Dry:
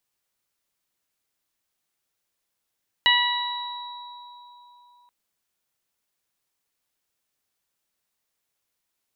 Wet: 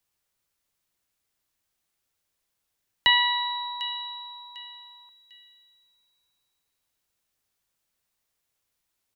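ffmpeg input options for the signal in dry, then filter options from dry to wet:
-f lavfi -i "aevalsrc='0.075*pow(10,-3*t/3.69)*sin(2*PI*973*t)+0.133*pow(10,-3*t/1.21)*sin(2*PI*1946*t)+0.133*pow(10,-3*t/0.84)*sin(2*PI*2919*t)+0.106*pow(10,-3*t/2.45)*sin(2*PI*3892*t)':d=2.03:s=44100"
-filter_complex "[0:a]acrossover=split=120|590|2000[s0][s1][s2][s3];[s0]acontrast=57[s4];[s3]aecho=1:1:749|1498|2247:0.251|0.0804|0.0257[s5];[s4][s1][s2][s5]amix=inputs=4:normalize=0"

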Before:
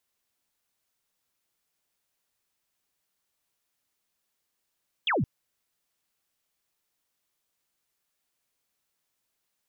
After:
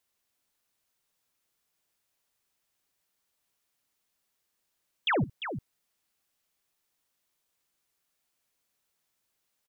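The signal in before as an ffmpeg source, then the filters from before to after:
-f lavfi -i "aevalsrc='0.075*clip(t/0.002,0,1)*clip((0.17-t)/0.002,0,1)*sin(2*PI*3600*0.17/log(100/3600)*(exp(log(100/3600)*t/0.17)-1))':d=0.17:s=44100"
-af "aecho=1:1:58|348:0.133|0.335"

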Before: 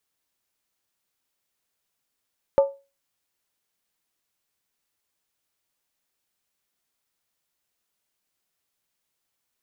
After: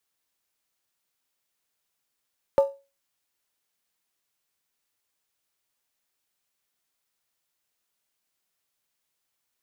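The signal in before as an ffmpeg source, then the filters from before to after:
-f lavfi -i "aevalsrc='0.316*pow(10,-3*t/0.29)*sin(2*PI*554*t)+0.0794*pow(10,-3*t/0.23)*sin(2*PI*883.1*t)+0.02*pow(10,-3*t/0.198)*sin(2*PI*1183.3*t)+0.00501*pow(10,-3*t/0.191)*sin(2*PI*1272*t)+0.00126*pow(10,-3*t/0.178)*sin(2*PI*1469.8*t)':d=0.63:s=44100"
-filter_complex "[0:a]acrossover=split=310[s0][s1];[s0]acrusher=bits=3:mode=log:mix=0:aa=0.000001[s2];[s2][s1]amix=inputs=2:normalize=0,lowshelf=f=490:g=-3.5"

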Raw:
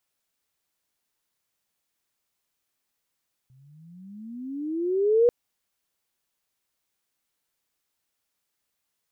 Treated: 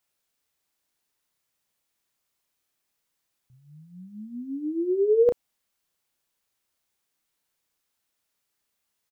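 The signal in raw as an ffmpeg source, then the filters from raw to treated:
-f lavfi -i "aevalsrc='pow(10,(-14+39*(t/1.79-1))/20)*sin(2*PI*126*1.79/(23.5*log(2)/12)*(exp(23.5*log(2)/12*t/1.79)-1))':d=1.79:s=44100"
-filter_complex "[0:a]asplit=2[s0][s1];[s1]adelay=33,volume=0.473[s2];[s0][s2]amix=inputs=2:normalize=0"

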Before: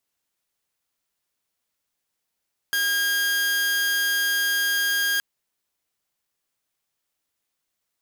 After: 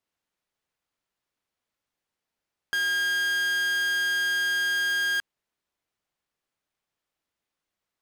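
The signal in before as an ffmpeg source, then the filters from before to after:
-f lavfi -i "aevalsrc='0.126*(2*mod(1620*t,1)-1)':d=2.47:s=44100"
-af "lowpass=f=2600:p=1"

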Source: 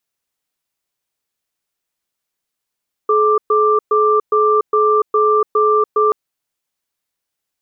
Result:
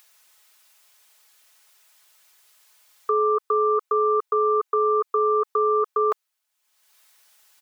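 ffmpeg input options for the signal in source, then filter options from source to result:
-f lavfi -i "aevalsrc='0.224*(sin(2*PI*427*t)+sin(2*PI*1180*t))*clip(min(mod(t,0.41),0.29-mod(t,0.41))/0.005,0,1)':d=3.03:s=44100"
-af "highpass=770,aecho=1:1:4.7:0.6,acompressor=mode=upward:threshold=0.00891:ratio=2.5"

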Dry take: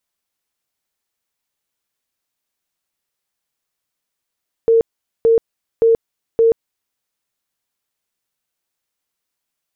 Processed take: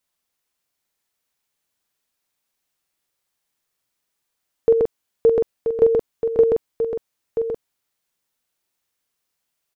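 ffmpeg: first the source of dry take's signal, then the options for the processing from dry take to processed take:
-f lavfi -i "aevalsrc='0.376*sin(2*PI*456*mod(t,0.57))*lt(mod(t,0.57),59/456)':d=2.28:s=44100"
-filter_complex "[0:a]asplit=2[s0][s1];[s1]adelay=45,volume=0.562[s2];[s0][s2]amix=inputs=2:normalize=0,aecho=1:1:981:0.422"

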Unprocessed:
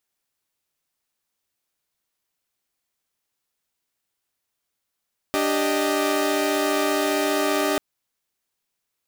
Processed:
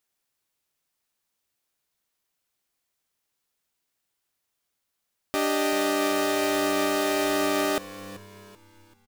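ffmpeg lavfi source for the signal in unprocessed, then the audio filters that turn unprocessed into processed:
-f lavfi -i "aevalsrc='0.0794*((2*mod(293.66*t,1)-1)+(2*mod(392*t,1)-1)+(2*mod(622.25*t,1)-1))':d=2.44:s=44100"
-filter_complex "[0:a]alimiter=limit=0.158:level=0:latency=1:release=177,asplit=5[s0][s1][s2][s3][s4];[s1]adelay=385,afreqshift=-97,volume=0.158[s5];[s2]adelay=770,afreqshift=-194,volume=0.0668[s6];[s3]adelay=1155,afreqshift=-291,volume=0.0279[s7];[s4]adelay=1540,afreqshift=-388,volume=0.0117[s8];[s0][s5][s6][s7][s8]amix=inputs=5:normalize=0"

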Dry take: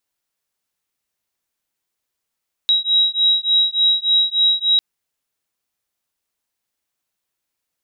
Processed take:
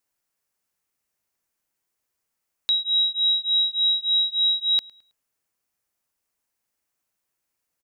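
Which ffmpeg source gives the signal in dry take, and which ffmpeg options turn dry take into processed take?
-f lavfi -i "aevalsrc='0.15*(sin(2*PI*3840*t)+sin(2*PI*3843.4*t))':d=2.1:s=44100"
-filter_complex "[0:a]equalizer=f=3600:t=o:w=0.67:g=-6,asplit=2[s0][s1];[s1]adelay=107,lowpass=f=3900:p=1,volume=0.075,asplit=2[s2][s3];[s3]adelay=107,lowpass=f=3900:p=1,volume=0.43,asplit=2[s4][s5];[s5]adelay=107,lowpass=f=3900:p=1,volume=0.43[s6];[s0][s2][s4][s6]amix=inputs=4:normalize=0"

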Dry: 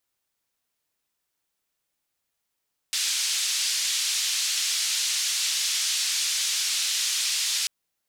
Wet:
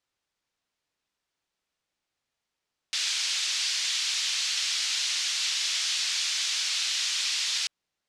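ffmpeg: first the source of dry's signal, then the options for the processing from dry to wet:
-f lavfi -i "anoisesrc=c=white:d=4.74:r=44100:seed=1,highpass=f=3400,lowpass=f=6100,volume=-12.5dB"
-af "lowpass=5800"

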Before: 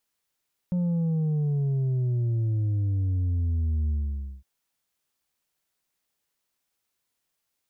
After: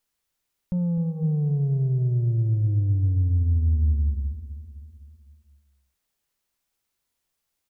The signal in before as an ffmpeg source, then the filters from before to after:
-f lavfi -i "aevalsrc='0.0708*clip((3.71-t)/0.53,0,1)*tanh(1.58*sin(2*PI*180*3.71/log(65/180)*(exp(log(65/180)*t/3.71)-1)))/tanh(1.58)':d=3.71:s=44100"
-filter_complex "[0:a]lowshelf=f=66:g=11.5,bandreject=f=161.3:t=h:w=4,bandreject=f=322.6:t=h:w=4,bandreject=f=483.9:t=h:w=4,bandreject=f=645.2:t=h:w=4,bandreject=f=806.5:t=h:w=4,bandreject=f=967.8:t=h:w=4,bandreject=f=1129.1:t=h:w=4,bandreject=f=1290.4:t=h:w=4,bandreject=f=1451.7:t=h:w=4,bandreject=f=1613:t=h:w=4,bandreject=f=1774.3:t=h:w=4,bandreject=f=1935.6:t=h:w=4,bandreject=f=2096.9:t=h:w=4,bandreject=f=2258.2:t=h:w=4,bandreject=f=2419.5:t=h:w=4,bandreject=f=2580.8:t=h:w=4,bandreject=f=2742.1:t=h:w=4,bandreject=f=2903.4:t=h:w=4,bandreject=f=3064.7:t=h:w=4,bandreject=f=3226:t=h:w=4,bandreject=f=3387.3:t=h:w=4,bandreject=f=3548.6:t=h:w=4,bandreject=f=3709.9:t=h:w=4,bandreject=f=3871.2:t=h:w=4,bandreject=f=4032.5:t=h:w=4,bandreject=f=4193.8:t=h:w=4,bandreject=f=4355.1:t=h:w=4,bandreject=f=4516.4:t=h:w=4,bandreject=f=4677.7:t=h:w=4,bandreject=f=4839:t=h:w=4,bandreject=f=5000.3:t=h:w=4,bandreject=f=5161.6:t=h:w=4,bandreject=f=5322.9:t=h:w=4,asplit=2[s0][s1];[s1]aecho=0:1:255|510|765|1020|1275|1530:0.224|0.128|0.0727|0.0415|0.0236|0.0135[s2];[s0][s2]amix=inputs=2:normalize=0"

